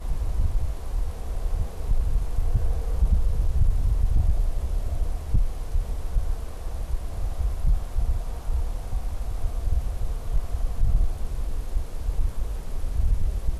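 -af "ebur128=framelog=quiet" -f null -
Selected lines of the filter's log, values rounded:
Integrated loudness:
  I:         -29.8 LUFS
  Threshold: -39.8 LUFS
Loudness range:
  LRA:         4.2 LU
  Threshold: -49.6 LUFS
  LRA low:   -31.4 LUFS
  LRA high:  -27.2 LUFS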